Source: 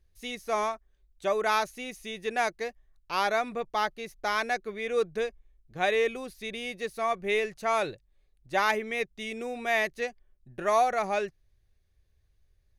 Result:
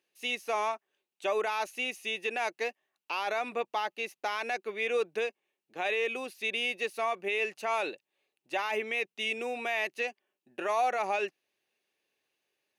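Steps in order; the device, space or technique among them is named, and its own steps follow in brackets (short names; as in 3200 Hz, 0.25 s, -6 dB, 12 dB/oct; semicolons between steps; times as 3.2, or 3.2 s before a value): laptop speaker (HPF 260 Hz 24 dB/oct; bell 870 Hz +5 dB 0.38 oct; bell 2700 Hz +11.5 dB 0.36 oct; limiter -21 dBFS, peak gain reduction 14 dB)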